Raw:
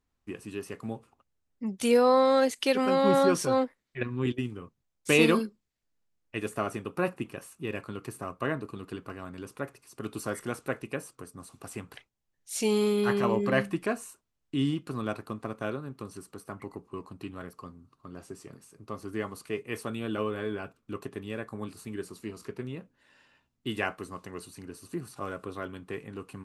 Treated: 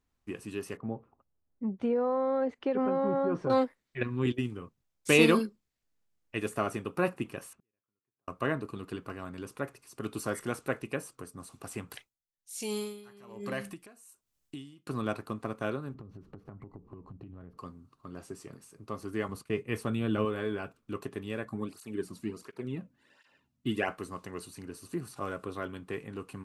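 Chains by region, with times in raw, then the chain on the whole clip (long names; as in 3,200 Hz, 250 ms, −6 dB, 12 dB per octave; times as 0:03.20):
0:00.77–0:03.50: low-pass filter 1,100 Hz + downward compressor, threshold −24 dBFS
0:07.53–0:08.28: low-pass filter 2,500 Hz + downward compressor 2 to 1, threshold −57 dBFS + gate with flip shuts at −52 dBFS, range −40 dB
0:11.90–0:14.87: high-shelf EQ 4,600 Hz +12 dB + downward compressor 4 to 1, threshold −31 dBFS + tremolo with a sine in dB 1.2 Hz, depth 21 dB
0:15.94–0:17.58: running median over 5 samples + spectral tilt −4.5 dB per octave + downward compressor 10 to 1, threshold −43 dBFS
0:19.28–0:20.25: downward expander −47 dBFS + bass and treble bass +7 dB, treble −3 dB
0:21.45–0:23.88: low-shelf EQ 270 Hz +7 dB + through-zero flanger with one copy inverted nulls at 1.4 Hz, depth 2.7 ms
whole clip: no processing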